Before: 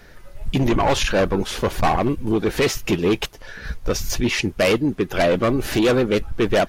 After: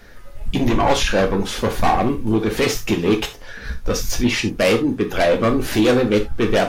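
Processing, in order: gated-style reverb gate 110 ms falling, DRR 4 dB

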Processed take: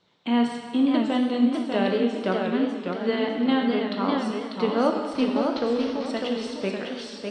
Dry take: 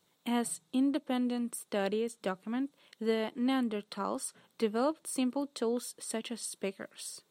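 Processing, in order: 5.13–6.06 s: CVSD coder 32 kbps; low-pass 4.9 kHz 24 dB/octave; reverberation RT60 1.6 s, pre-delay 13 ms, DRR 2 dB; modulated delay 599 ms, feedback 35%, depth 137 cents, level -5 dB; trim +6.5 dB

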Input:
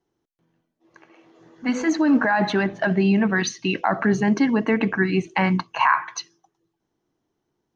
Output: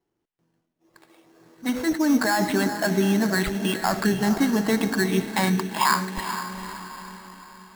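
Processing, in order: echo that smears into a reverb 454 ms, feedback 50%, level -8.5 dB; sample-rate reducer 6 kHz, jitter 0%; trim -2.5 dB

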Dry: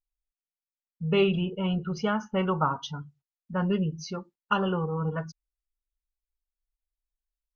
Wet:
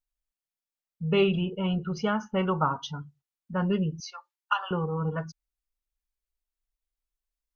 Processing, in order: 4.00–4.71 s: steep high-pass 770 Hz 36 dB/octave

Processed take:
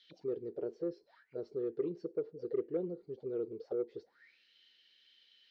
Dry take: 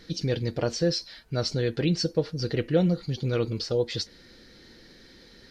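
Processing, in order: auto-wah 400–3500 Hz, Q 12, down, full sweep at -25.5 dBFS; Chebyshev shaper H 5 -30 dB, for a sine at -25.5 dBFS; trim +2 dB

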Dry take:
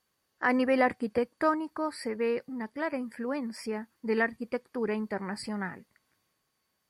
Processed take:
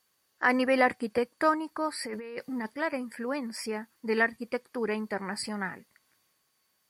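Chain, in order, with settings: tilt EQ +1.5 dB/octave; 2.04–2.74 s: compressor with a negative ratio -38 dBFS, ratio -1; trim +2 dB

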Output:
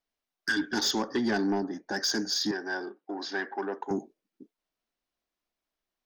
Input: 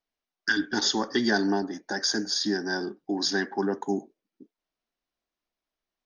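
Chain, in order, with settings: 1.02–1.93 s: treble shelf 2.1 kHz -9 dB; saturation -20.5 dBFS, distortion -16 dB; 2.51–3.91 s: band-pass 430–2900 Hz

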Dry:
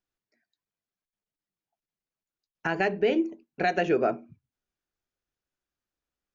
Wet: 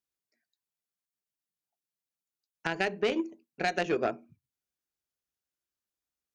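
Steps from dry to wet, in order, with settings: high-pass 48 Hz; treble shelf 4.2 kHz +10.5 dB; Chebyshev shaper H 3 -13 dB, 5 -35 dB, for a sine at -11.5 dBFS

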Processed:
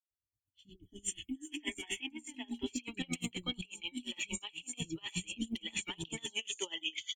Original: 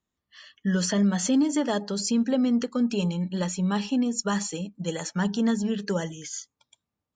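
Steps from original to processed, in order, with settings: fade-in on the opening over 1.51 s; FFT filter 110 Hz 0 dB, 200 Hz -27 dB, 310 Hz -6 dB, 490 Hz -26 dB, 900 Hz -14 dB, 1.6 kHz -24 dB, 2.3 kHz +10 dB, 3.4 kHz +6 dB, 5 kHz -23 dB, 7.8 kHz +3 dB; in parallel at -5.5 dB: saturation -29.5 dBFS, distortion -14 dB; 0.69–2.03 s: on the sum: static phaser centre 830 Hz, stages 8; three bands offset in time lows, highs, mids 220/710 ms, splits 320/4700 Hz; compressor with a negative ratio -42 dBFS, ratio -1; logarithmic tremolo 8.3 Hz, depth 25 dB; trim +6 dB

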